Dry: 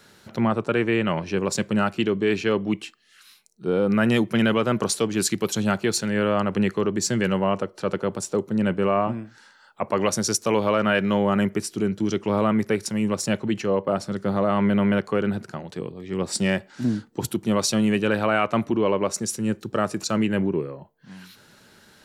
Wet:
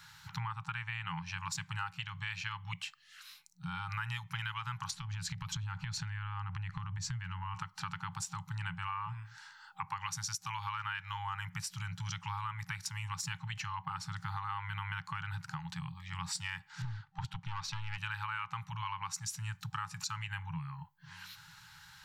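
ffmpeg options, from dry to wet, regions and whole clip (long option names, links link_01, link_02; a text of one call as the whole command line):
ffmpeg -i in.wav -filter_complex "[0:a]asettb=1/sr,asplit=3[link_01][link_02][link_03];[link_01]atrim=end=4.914[link_04];[link_02]atrim=start=4.91:end=7.55,asetpts=PTS-STARTPTS,afade=type=in:duration=0.004:curve=qsin,afade=type=out:start_time=2.636:duration=0.004:curve=qsin,aemphasis=mode=reproduction:type=bsi,acompressor=threshold=-25dB:ratio=5:attack=3.2:release=140:knee=1:detection=peak[link_05];[link_03]atrim=start=7.546[link_06];[link_04][link_05]acrossfade=duration=0.004:curve1=hsin:curve2=qsin[link_07];[link_07][link_06]acrossfade=duration=0.004:curve1=qsin:curve2=hsin,asettb=1/sr,asplit=3[link_08][link_09][link_10];[link_08]atrim=end=16.824[link_11];[link_09]atrim=start=16.82:end=17.98,asetpts=PTS-STARTPTS,afade=type=in:duration=0.004:curve=qsin,afade=type=out:start_time=1.156:duration=0.004:curve=qsin,lowpass=3400,aeval=exprs='(tanh(8.91*val(0)+0.45)-tanh(0.45))/8.91':channel_layout=same[link_12];[link_10]atrim=start=17.976[link_13];[link_11][link_12]acrossfade=duration=0.004:curve1=hsin:curve2=qsin[link_14];[link_14][link_13]acrossfade=duration=0.004:curve1=qsin:curve2=hsin,afftfilt=real='re*(1-between(b*sr/4096,180,790))':imag='im*(1-between(b*sr/4096,180,790))':win_size=4096:overlap=0.75,equalizer=frequency=9700:width=2.6:gain=-7,acompressor=threshold=-35dB:ratio=6,volume=-1dB" out.wav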